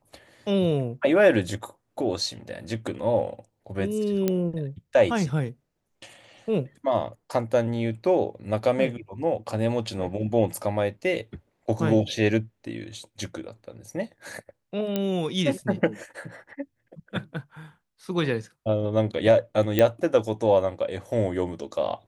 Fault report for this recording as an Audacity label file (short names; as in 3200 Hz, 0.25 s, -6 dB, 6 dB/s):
4.280000	4.280000	pop -10 dBFS
14.960000	14.960000	pop -12 dBFS
19.790000	19.790000	pop -8 dBFS